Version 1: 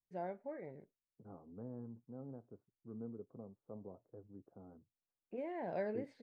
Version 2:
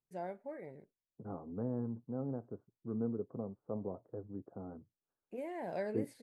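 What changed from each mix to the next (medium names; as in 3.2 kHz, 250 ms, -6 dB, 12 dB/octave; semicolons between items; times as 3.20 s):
second voice +10.0 dB; master: remove distance through air 180 m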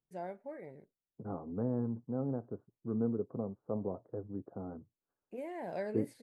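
second voice +3.5 dB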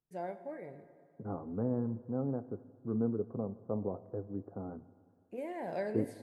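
reverb: on, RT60 2.3 s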